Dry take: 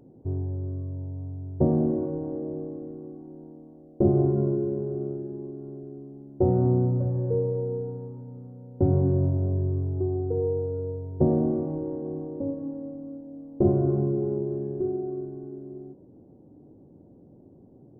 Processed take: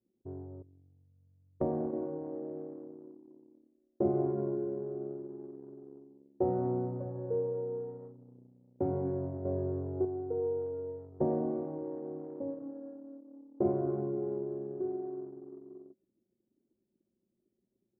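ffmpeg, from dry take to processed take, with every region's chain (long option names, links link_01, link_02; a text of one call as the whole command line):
ffmpeg -i in.wav -filter_complex "[0:a]asettb=1/sr,asplit=3[link_01][link_02][link_03];[link_01]atrim=end=0.624[link_04];[link_02]atrim=start=0.62:end=1.93,asetpts=PTS-STARTPTS,afade=type=in:duration=0.004:curve=qsin,afade=type=out:start_time=1.306:duration=0.004:curve=qsin,agate=range=-10dB:threshold=-25dB:ratio=16:release=100:detection=peak,asubboost=boost=8.5:cutoff=73[link_05];[link_03]atrim=start=1.926[link_06];[link_04][link_05]acrossfade=duration=0.004:curve1=hsin:curve2=qsin[link_07];[link_07][link_06]acrossfade=duration=0.004:curve1=qsin:curve2=hsin,asettb=1/sr,asplit=3[link_08][link_09][link_10];[link_08]atrim=end=9.454[link_11];[link_09]atrim=start=9.45:end=10.05,asetpts=PTS-STARTPTS,afade=type=in:duration=0.004:curve=qsin,afade=type=out:start_time=0.596:duration=0.004:curve=qsin,equalizer=frequency=520:width_type=o:width=0.38:gain=7,acontrast=29[link_12];[link_10]atrim=start=10.046[link_13];[link_11][link_12]acrossfade=duration=0.004:curve1=hsin:curve2=qsin[link_14];[link_14][link_13]acrossfade=duration=0.004:curve1=qsin:curve2=hsin,anlmdn=2.51,highpass=frequency=750:poles=1" out.wav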